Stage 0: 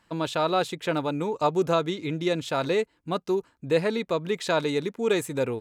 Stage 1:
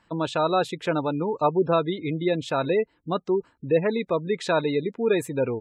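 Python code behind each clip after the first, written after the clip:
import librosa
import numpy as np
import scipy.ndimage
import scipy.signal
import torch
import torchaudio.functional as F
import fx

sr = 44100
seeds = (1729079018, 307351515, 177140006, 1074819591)

y = fx.spec_gate(x, sr, threshold_db=-25, keep='strong')
y = fx.high_shelf(y, sr, hz=4300.0, db=-5.0)
y = y * 10.0 ** (2.0 / 20.0)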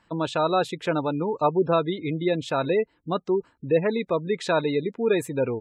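y = x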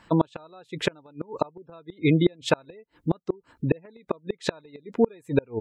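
y = fx.gate_flip(x, sr, shuts_db=-17.0, range_db=-34)
y = y * 10.0 ** (8.5 / 20.0)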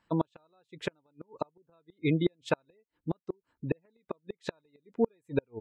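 y = fx.upward_expand(x, sr, threshold_db=-41.0, expansion=1.5)
y = y * 10.0 ** (-5.5 / 20.0)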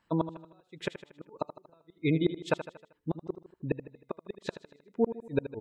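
y = fx.echo_feedback(x, sr, ms=78, feedback_pct=50, wet_db=-12.0)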